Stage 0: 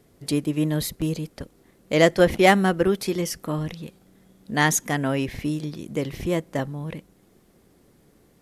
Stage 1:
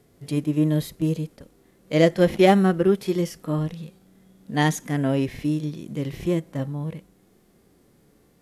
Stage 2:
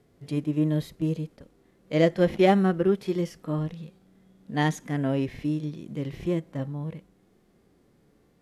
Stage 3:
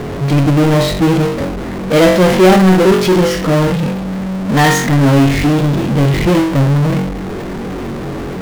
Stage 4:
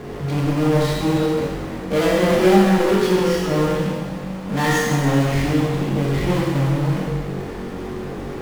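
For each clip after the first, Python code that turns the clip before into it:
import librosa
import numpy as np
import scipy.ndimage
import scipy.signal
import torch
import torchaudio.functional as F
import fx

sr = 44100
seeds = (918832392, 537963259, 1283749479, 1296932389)

y1 = fx.hpss(x, sr, part='percussive', gain_db=-14)
y1 = y1 * 10.0 ** (3.0 / 20.0)
y2 = fx.high_shelf(y1, sr, hz=7000.0, db=-11.0)
y2 = y2 * 10.0 ** (-3.5 / 20.0)
y3 = fx.room_flutter(y2, sr, wall_m=3.7, rt60_s=0.32)
y3 = fx.env_lowpass(y3, sr, base_hz=1800.0, full_db=-17.0)
y3 = fx.power_curve(y3, sr, exponent=0.35)
y3 = y3 * 10.0 ** (2.5 / 20.0)
y4 = fx.rev_plate(y3, sr, seeds[0], rt60_s=1.6, hf_ratio=1.0, predelay_ms=0, drr_db=-4.0)
y4 = y4 * 10.0 ** (-12.5 / 20.0)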